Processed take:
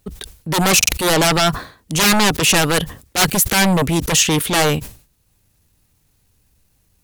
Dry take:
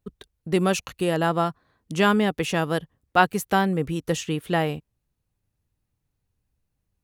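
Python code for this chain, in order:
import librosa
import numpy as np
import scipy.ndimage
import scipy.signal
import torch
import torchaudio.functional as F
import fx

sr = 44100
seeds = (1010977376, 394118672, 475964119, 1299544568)

p1 = fx.peak_eq(x, sr, hz=130.0, db=-2.5, octaves=0.29)
p2 = fx.fold_sine(p1, sr, drive_db=19, ceiling_db=-5.0)
p3 = p1 + F.gain(torch.from_numpy(p2), -6.5).numpy()
p4 = fx.high_shelf(p3, sr, hz=2900.0, db=9.5)
p5 = fx.transient(p4, sr, attack_db=-8, sustain_db=-3)
p6 = fx.buffer_glitch(p5, sr, at_s=(0.78,), block=2048, repeats=2)
p7 = fx.sustainer(p6, sr, db_per_s=130.0)
y = F.gain(torch.from_numpy(p7), -2.0).numpy()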